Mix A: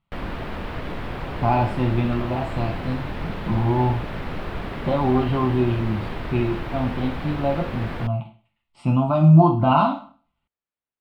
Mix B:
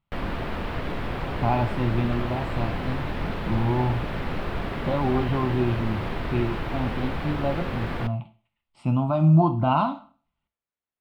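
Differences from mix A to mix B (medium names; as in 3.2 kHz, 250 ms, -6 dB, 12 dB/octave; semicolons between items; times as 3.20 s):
speech: send -9.0 dB; background: send on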